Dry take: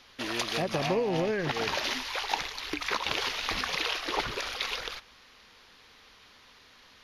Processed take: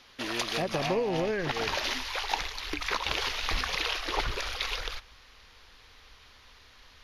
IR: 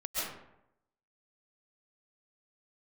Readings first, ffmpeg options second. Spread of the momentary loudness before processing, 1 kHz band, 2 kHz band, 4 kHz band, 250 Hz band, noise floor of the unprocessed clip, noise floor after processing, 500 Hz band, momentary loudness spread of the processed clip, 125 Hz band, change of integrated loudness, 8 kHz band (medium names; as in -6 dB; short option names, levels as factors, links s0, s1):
5 LU, 0.0 dB, 0.0 dB, 0.0 dB, -1.0 dB, -57 dBFS, -56 dBFS, -0.5 dB, 5 LU, -0.5 dB, 0.0 dB, 0.0 dB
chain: -af "asubboost=boost=6:cutoff=75"